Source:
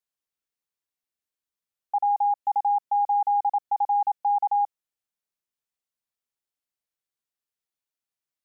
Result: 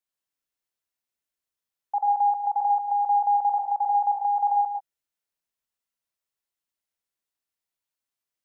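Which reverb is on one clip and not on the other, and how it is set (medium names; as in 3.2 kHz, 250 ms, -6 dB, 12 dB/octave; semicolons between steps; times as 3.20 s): gated-style reverb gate 160 ms rising, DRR 1 dB; trim -1 dB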